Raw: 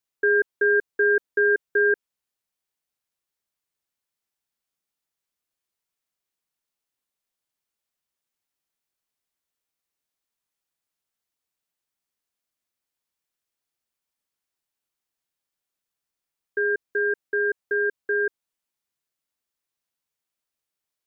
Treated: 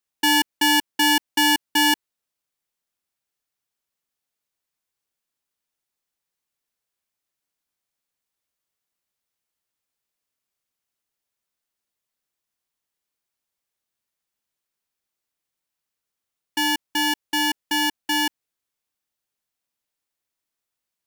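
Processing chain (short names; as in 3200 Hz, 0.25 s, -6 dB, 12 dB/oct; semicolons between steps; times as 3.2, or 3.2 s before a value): polarity switched at an audio rate 1300 Hz; gain +1.5 dB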